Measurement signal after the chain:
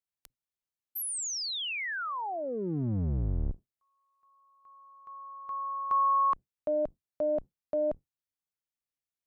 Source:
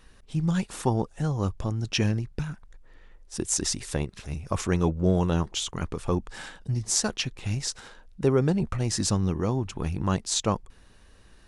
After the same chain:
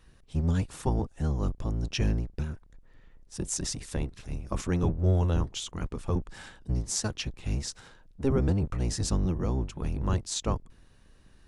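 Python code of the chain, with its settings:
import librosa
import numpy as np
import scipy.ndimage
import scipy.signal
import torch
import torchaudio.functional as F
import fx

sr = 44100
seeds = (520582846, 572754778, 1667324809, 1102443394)

y = fx.octave_divider(x, sr, octaves=1, level_db=4.0)
y = y * 10.0 ** (-6.0 / 20.0)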